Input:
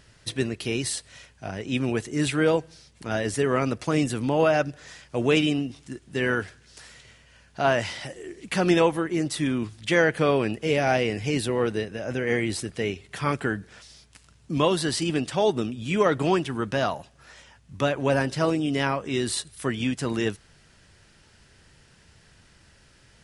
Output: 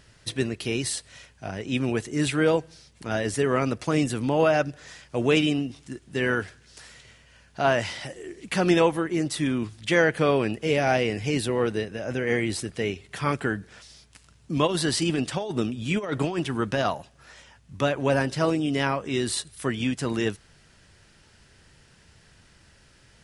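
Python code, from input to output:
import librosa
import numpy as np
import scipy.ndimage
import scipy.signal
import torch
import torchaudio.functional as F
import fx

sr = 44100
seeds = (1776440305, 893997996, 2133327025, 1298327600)

y = fx.over_compress(x, sr, threshold_db=-24.0, ratio=-0.5, at=(14.66, 16.91), fade=0.02)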